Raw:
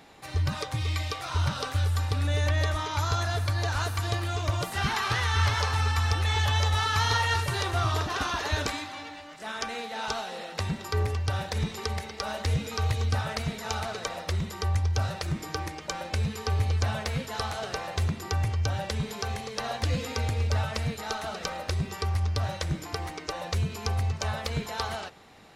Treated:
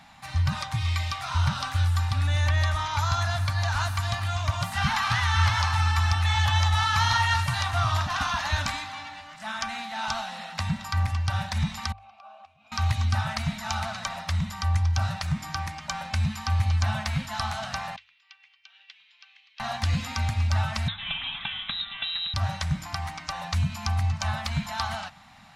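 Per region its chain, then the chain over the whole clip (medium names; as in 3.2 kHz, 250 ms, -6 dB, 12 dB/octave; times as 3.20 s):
11.92–12.72 s: compression 8:1, threshold -36 dBFS + vowel filter a
17.96–19.60 s: ladder band-pass 3.2 kHz, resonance 50% + distance through air 160 m + upward expansion, over -59 dBFS
20.88–22.34 s: bass shelf 170 Hz -10.5 dB + frequency inversion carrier 3.9 kHz
whole clip: Chebyshev band-stop 210–790 Hz, order 2; treble shelf 9.3 kHz -6.5 dB; hum notches 50/100 Hz; trim +3.5 dB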